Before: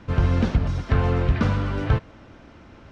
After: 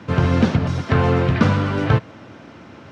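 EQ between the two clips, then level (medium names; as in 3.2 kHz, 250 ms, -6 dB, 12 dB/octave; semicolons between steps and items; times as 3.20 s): high-pass 100 Hz 24 dB/octave; +7.0 dB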